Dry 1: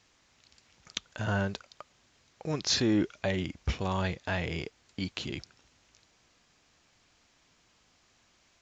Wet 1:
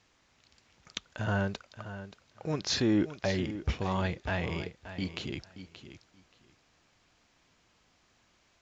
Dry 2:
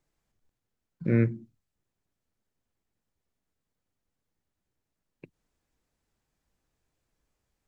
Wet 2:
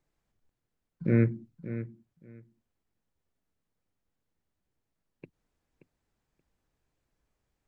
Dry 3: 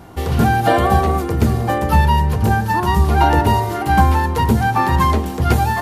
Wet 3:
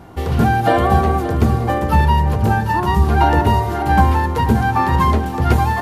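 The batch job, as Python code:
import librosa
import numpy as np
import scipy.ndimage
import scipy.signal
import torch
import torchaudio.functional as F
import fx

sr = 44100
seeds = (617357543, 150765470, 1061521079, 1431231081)

p1 = fx.high_shelf(x, sr, hz=4000.0, db=-6.0)
y = p1 + fx.echo_feedback(p1, sr, ms=578, feedback_pct=17, wet_db=-12.5, dry=0)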